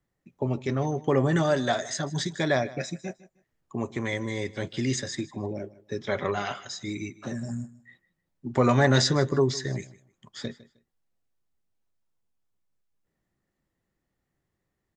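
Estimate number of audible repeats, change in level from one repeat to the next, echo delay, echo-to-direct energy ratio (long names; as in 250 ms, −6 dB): 2, −13.0 dB, 155 ms, −19.0 dB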